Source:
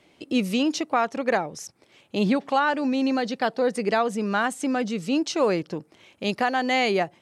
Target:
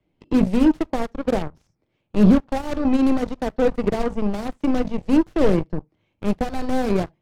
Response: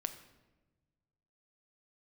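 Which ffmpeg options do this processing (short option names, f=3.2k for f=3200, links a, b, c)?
-filter_complex "[0:a]acrossover=split=190|830[a][b][c];[c]aeval=exprs='(mod(25.1*val(0)+1,2)-1)/25.1':c=same[d];[a][b][d]amix=inputs=3:normalize=0[e];[1:a]atrim=start_sample=2205,atrim=end_sample=3528[f];[e][f]afir=irnorm=-1:irlink=0,asplit=2[g][h];[h]asoftclip=type=tanh:threshold=-27.5dB,volume=-8dB[i];[g][i]amix=inputs=2:normalize=0,lowshelf=f=68:g=4.5,aeval=exprs='0.266*(cos(1*acos(clip(val(0)/0.266,-1,1)))-cos(1*PI/2))+0.0422*(cos(7*acos(clip(val(0)/0.266,-1,1)))-cos(7*PI/2))':c=same,aemphasis=mode=reproduction:type=riaa"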